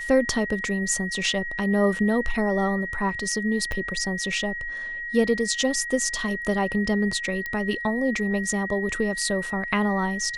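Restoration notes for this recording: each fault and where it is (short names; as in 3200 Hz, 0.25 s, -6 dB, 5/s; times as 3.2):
tone 1900 Hz -30 dBFS
3.72 pop -16 dBFS
7.46 pop -18 dBFS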